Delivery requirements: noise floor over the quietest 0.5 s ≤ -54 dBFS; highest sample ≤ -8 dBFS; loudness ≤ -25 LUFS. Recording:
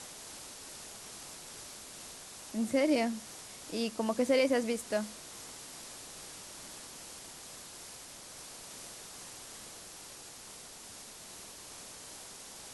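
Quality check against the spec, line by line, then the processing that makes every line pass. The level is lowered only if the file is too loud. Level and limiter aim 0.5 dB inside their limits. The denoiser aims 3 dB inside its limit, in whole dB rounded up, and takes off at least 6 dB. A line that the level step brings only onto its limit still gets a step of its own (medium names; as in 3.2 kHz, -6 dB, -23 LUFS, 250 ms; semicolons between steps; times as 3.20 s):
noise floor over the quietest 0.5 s -50 dBFS: fail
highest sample -16.5 dBFS: pass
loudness -37.5 LUFS: pass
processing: noise reduction 7 dB, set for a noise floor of -50 dBFS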